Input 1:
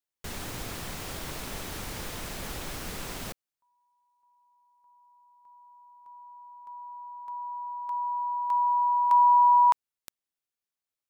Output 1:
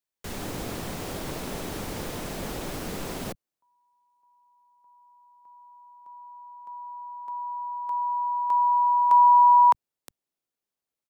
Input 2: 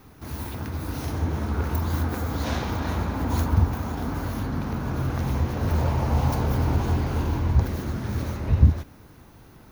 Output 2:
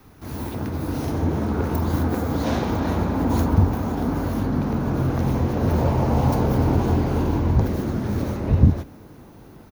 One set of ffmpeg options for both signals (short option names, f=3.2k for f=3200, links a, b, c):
-filter_complex "[0:a]acrossover=split=140|780|4700[a][b][c][d];[a]asplit=2[e][f];[f]adelay=21,volume=-7dB[g];[e][g]amix=inputs=2:normalize=0[h];[b]dynaudnorm=f=200:g=3:m=8dB[i];[h][i][c][d]amix=inputs=4:normalize=0"